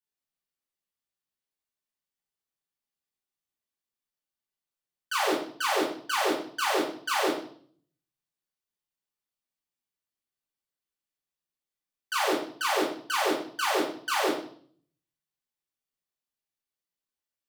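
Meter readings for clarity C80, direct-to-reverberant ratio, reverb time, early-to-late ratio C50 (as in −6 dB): 9.5 dB, −6.0 dB, 0.55 s, 5.0 dB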